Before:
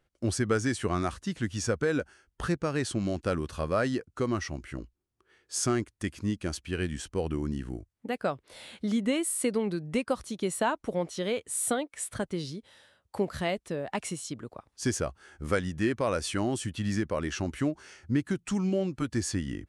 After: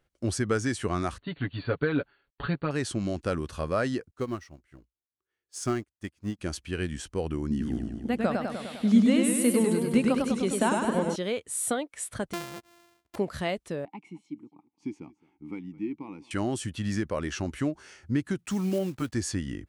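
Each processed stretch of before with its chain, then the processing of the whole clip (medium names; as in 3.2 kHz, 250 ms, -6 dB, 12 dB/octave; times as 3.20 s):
1.18–2.71 s: companding laws mixed up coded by A + brick-wall FIR low-pass 4.6 kHz + comb 7.1 ms, depth 72%
4.11–6.39 s: companding laws mixed up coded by mu + upward expansion 2.5:1, over -44 dBFS
7.50–11.16 s: peaking EQ 230 Hz +9 dB 0.45 oct + modulated delay 101 ms, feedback 68%, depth 114 cents, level -3.5 dB
12.33–13.16 s: sorted samples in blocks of 128 samples + bass shelf 270 Hz -7.5 dB
13.85–16.31 s: vowel filter u + peaking EQ 170 Hz +10.5 dB 0.93 oct + delay 215 ms -21.5 dB
18.39–19.15 s: block-companded coder 5-bit + high-pass 47 Hz
whole clip: none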